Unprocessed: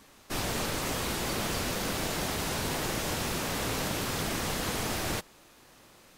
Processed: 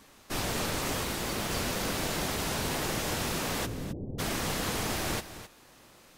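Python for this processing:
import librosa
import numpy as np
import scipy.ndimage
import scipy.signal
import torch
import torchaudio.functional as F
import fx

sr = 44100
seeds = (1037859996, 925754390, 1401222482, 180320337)

y = fx.law_mismatch(x, sr, coded='A', at=(1.03, 1.51))
y = fx.gaussian_blur(y, sr, sigma=19.0, at=(3.65, 4.18), fade=0.02)
y = y + 10.0 ** (-13.0 / 20.0) * np.pad(y, (int(261 * sr / 1000.0), 0))[:len(y)]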